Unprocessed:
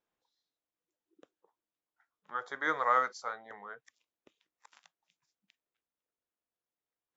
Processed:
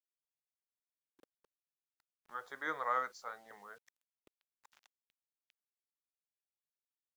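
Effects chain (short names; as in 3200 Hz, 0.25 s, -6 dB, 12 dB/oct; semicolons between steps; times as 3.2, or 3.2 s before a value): requantised 10-bit, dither none; gain -7 dB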